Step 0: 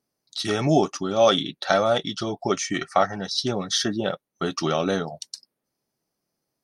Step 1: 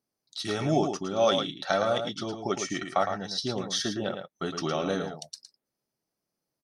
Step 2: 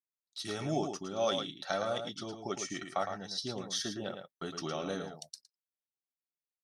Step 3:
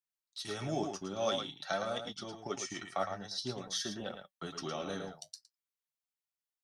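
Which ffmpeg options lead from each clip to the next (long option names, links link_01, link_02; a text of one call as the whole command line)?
ffmpeg -i in.wav -filter_complex "[0:a]asplit=2[link_01][link_02];[link_02]adelay=110.8,volume=-7dB,highshelf=frequency=4000:gain=-2.49[link_03];[link_01][link_03]amix=inputs=2:normalize=0,volume=-6dB" out.wav
ffmpeg -i in.wav -af "agate=range=-20dB:threshold=-46dB:ratio=16:detection=peak,highshelf=frequency=6700:gain=8,volume=-8dB" out.wav
ffmpeg -i in.wav -filter_complex "[0:a]flanger=delay=3.8:depth=7:regen=58:speed=0.49:shape=triangular,acrossover=split=170|530|3600[link_01][link_02][link_03][link_04];[link_02]aeval=exprs='sgn(val(0))*max(abs(val(0))-0.00133,0)':channel_layout=same[link_05];[link_01][link_05][link_03][link_04]amix=inputs=4:normalize=0,volume=3dB" out.wav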